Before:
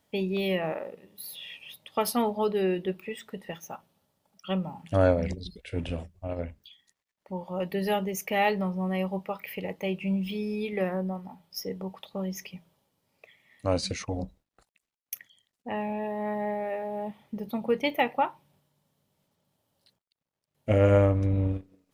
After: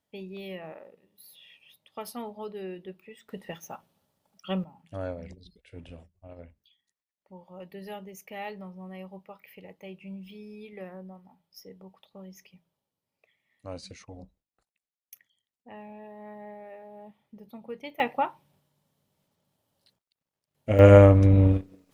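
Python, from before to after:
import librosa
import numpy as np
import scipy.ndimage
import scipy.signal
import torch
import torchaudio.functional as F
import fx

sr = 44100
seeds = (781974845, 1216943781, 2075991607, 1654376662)

y = fx.gain(x, sr, db=fx.steps((0.0, -11.5), (3.29, -1.0), (4.64, -13.0), (18.0, -1.0), (20.79, 7.5)))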